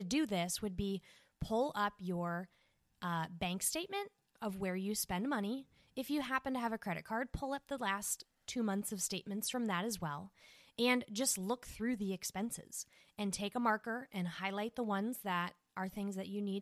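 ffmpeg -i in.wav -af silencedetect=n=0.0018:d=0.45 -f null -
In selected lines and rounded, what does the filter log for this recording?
silence_start: 2.45
silence_end: 3.02 | silence_duration: 0.57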